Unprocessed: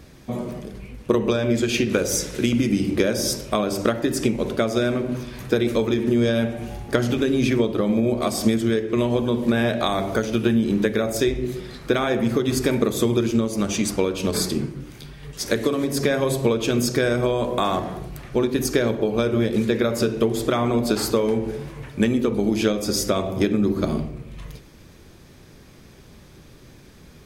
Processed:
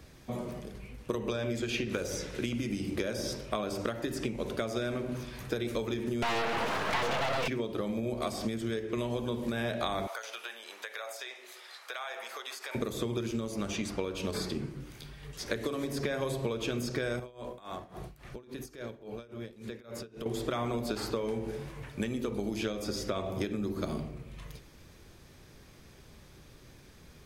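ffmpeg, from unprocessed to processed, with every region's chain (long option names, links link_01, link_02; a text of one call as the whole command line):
ffmpeg -i in.wav -filter_complex "[0:a]asettb=1/sr,asplit=3[link_01][link_02][link_03];[link_01]atrim=end=6.224[link_04];[link_02]atrim=start=6.22:end=7.48,asetpts=PTS-STARTPTS,afade=type=in:duration=0.004:curve=qsin,afade=type=out:start_time=1.256:duration=0.004:curve=qsin,aecho=1:1:4.5:0.86,atrim=end_sample=55566,asplit=2[link_05][link_06];[link_06]highpass=frequency=720:poles=1,volume=34dB,asoftclip=type=tanh:threshold=-3dB[link_07];[link_05][link_07]amix=inputs=2:normalize=0,lowpass=frequency=1100:poles=1,volume=-6dB,aeval=exprs='abs(val(0))':channel_layout=same[link_08];[link_03]atrim=start=7.476[link_09];[link_04][link_08]acrossfade=duration=0.004:curve1=hsin:curve2=qsin[link_10];[link_10][link_09]acrossfade=duration=0.004:curve1=qsin:curve2=hsin,asettb=1/sr,asplit=3[link_11][link_12][link_13];[link_11]atrim=end=10.074[link_14];[link_12]atrim=start=10.07:end=12.75,asetpts=PTS-STARTPTS,afade=type=in:duration=0.004:curve=qsin,afade=type=out:start_time=2.676:duration=0.004:curve=qsin,highpass=frequency=700:width=0.5412,highpass=frequency=700:width=1.3066,acompressor=threshold=-29dB:ratio=5:attack=3.2:release=140:knee=1:detection=peak[link_15];[link_13]atrim=start=12.746[link_16];[link_14][link_15]acrossfade=duration=0.004:curve1=hsin:curve2=qsin[link_17];[link_17][link_16]acrossfade=duration=0.004:curve1=qsin:curve2=hsin,asettb=1/sr,asplit=3[link_18][link_19][link_20];[link_18]atrim=end=17.194[link_21];[link_19]atrim=start=17.19:end=20.26,asetpts=PTS-STARTPTS,afade=type=in:duration=0.004:curve=qsin,afade=type=out:start_time=3.066:duration=0.004:curve=qsin,acompressor=threshold=-27dB:ratio=10:attack=3.2:release=140:knee=1:detection=peak,tremolo=f=3.6:d=0.88[link_22];[link_20]atrim=start=20.256[link_23];[link_21][link_22]acrossfade=duration=0.004:curve1=hsin:curve2=qsin[link_24];[link_24][link_23]acrossfade=duration=0.004:curve1=qsin:curve2=hsin,acrossover=split=88|4300[link_25][link_26][link_27];[link_25]acompressor=threshold=-40dB:ratio=4[link_28];[link_26]acompressor=threshold=-22dB:ratio=4[link_29];[link_27]acompressor=threshold=-43dB:ratio=4[link_30];[link_28][link_29][link_30]amix=inputs=3:normalize=0,equalizer=frequency=230:width=0.69:gain=-4,volume=-5.5dB" out.wav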